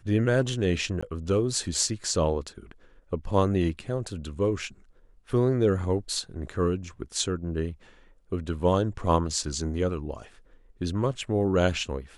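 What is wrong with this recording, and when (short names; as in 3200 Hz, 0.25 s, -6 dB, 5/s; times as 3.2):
1.01–1.02 gap 15 ms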